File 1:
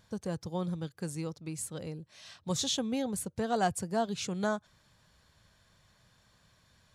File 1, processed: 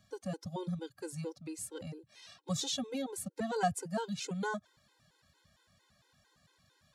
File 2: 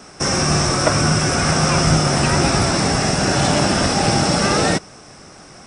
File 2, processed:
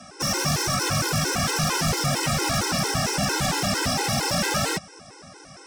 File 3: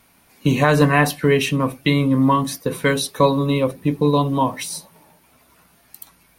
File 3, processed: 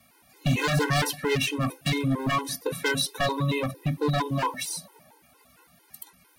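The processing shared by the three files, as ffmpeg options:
-filter_complex "[0:a]highpass=f=83:p=1,acrossover=split=250|560|4100[a][b][c][d];[b]acompressor=threshold=-32dB:ratio=6[e];[a][e][c][d]amix=inputs=4:normalize=0,aeval=exprs='0.168*(abs(mod(val(0)/0.168+3,4)-2)-1)':c=same,afftfilt=real='re*gt(sin(2*PI*4.4*pts/sr)*(1-2*mod(floor(b*sr/1024/270),2)),0)':imag='im*gt(sin(2*PI*4.4*pts/sr)*(1-2*mod(floor(b*sr/1024/270),2)),0)':win_size=1024:overlap=0.75"

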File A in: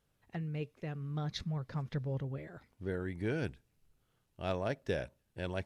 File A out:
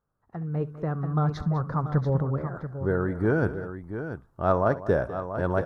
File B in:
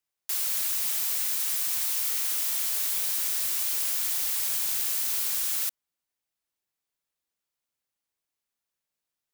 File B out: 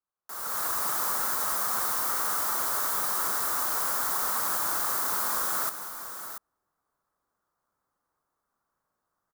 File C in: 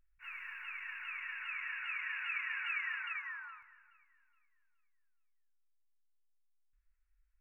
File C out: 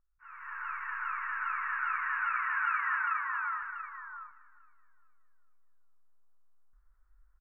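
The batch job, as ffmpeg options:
-af "highshelf=f=1.8k:t=q:w=3:g=-13,aecho=1:1:67|200|685:0.112|0.168|0.316,dynaudnorm=f=130:g=7:m=15.5dB,volume=-4.5dB"

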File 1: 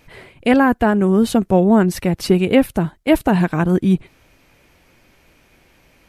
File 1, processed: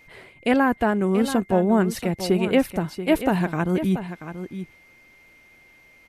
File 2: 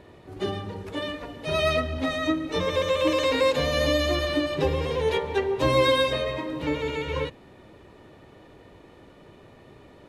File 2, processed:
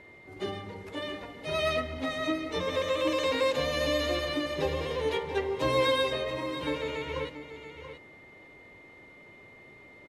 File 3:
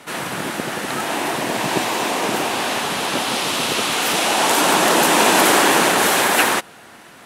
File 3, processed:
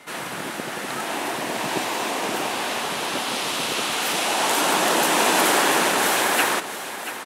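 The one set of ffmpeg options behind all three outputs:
-af "aeval=exprs='val(0)+0.00447*sin(2*PI*2100*n/s)':c=same,lowshelf=f=190:g=-5.5,aecho=1:1:683:0.282,volume=-4.5dB"

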